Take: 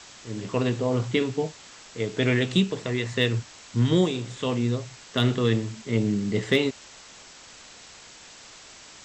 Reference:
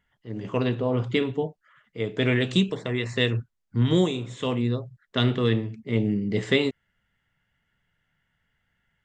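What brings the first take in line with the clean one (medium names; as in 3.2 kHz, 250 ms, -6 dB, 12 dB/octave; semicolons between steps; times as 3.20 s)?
clip repair -11 dBFS; noise print and reduce 27 dB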